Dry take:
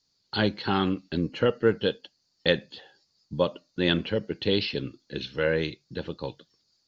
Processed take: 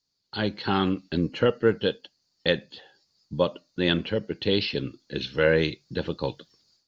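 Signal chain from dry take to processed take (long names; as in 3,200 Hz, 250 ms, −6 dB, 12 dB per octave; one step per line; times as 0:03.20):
automatic gain control gain up to 13 dB
level −6.5 dB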